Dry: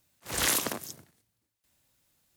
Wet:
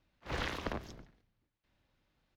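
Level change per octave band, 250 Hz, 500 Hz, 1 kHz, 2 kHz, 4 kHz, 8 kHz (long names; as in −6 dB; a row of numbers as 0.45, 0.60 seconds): −4.0, −4.0, −5.0, −7.5, −12.0, −27.0 decibels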